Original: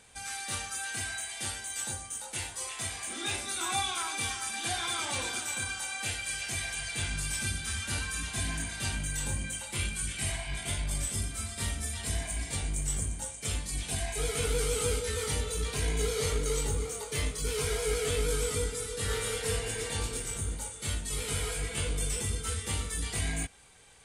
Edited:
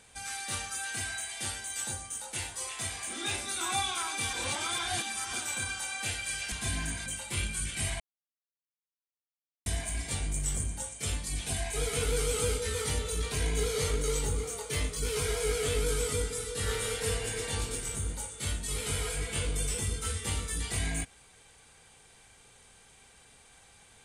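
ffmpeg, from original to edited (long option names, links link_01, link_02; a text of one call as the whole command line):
ffmpeg -i in.wav -filter_complex "[0:a]asplit=7[link_01][link_02][link_03][link_04][link_05][link_06][link_07];[link_01]atrim=end=4.332[link_08];[link_02]atrim=start=4.328:end=5.332,asetpts=PTS-STARTPTS,areverse[link_09];[link_03]atrim=start=5.328:end=6.522[link_10];[link_04]atrim=start=8.238:end=8.782[link_11];[link_05]atrim=start=9.478:end=10.42,asetpts=PTS-STARTPTS,afade=type=out:start_time=0.938:duration=0.004:curve=hsin[link_12];[link_06]atrim=start=10.42:end=12.08,asetpts=PTS-STARTPTS,volume=0[link_13];[link_07]atrim=start=12.08,asetpts=PTS-STARTPTS,afade=type=in:duration=0.004:curve=hsin[link_14];[link_08][link_09]acrossfade=duration=0.004:curve1=hsin:curve2=hsin[link_15];[link_15][link_10]acrossfade=duration=0.004:curve1=hsin:curve2=hsin[link_16];[link_16][link_11]acrossfade=duration=0.004:curve1=hsin:curve2=hsin[link_17];[link_12][link_13][link_14]concat=n=3:v=0:a=1[link_18];[link_17][link_18]acrossfade=duration=0.004:curve1=hsin:curve2=hsin" out.wav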